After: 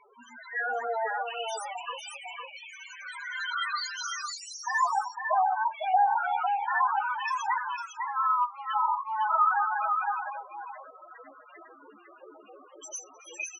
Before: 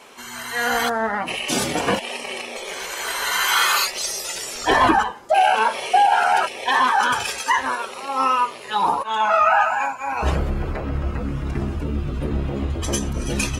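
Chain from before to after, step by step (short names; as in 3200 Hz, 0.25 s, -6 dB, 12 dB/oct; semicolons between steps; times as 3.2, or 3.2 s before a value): HPF 210 Hz 12 dB/oct, from 1.23 s 860 Hz; loudest bins only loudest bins 4; echo 0.503 s -5 dB; gain -4 dB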